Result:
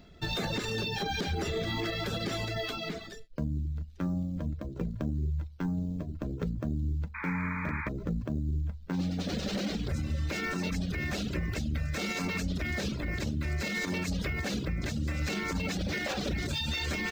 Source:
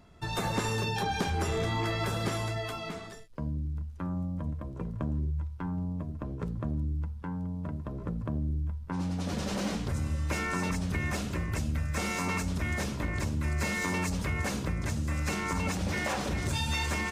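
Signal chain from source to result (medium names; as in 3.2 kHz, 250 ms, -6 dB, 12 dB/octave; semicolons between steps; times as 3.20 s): in parallel at -11 dB: sample-rate reducer 7.2 kHz, jitter 20%; on the sum: fifteen-band graphic EQ 100 Hz -7 dB, 1 kHz -11 dB, 4 kHz +7 dB, 10 kHz -12 dB; peak limiter -25 dBFS, peak gain reduction 8 dB; reverb removal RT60 0.63 s; painted sound noise, 7.14–7.89 s, 840–2500 Hz -41 dBFS; trim +3 dB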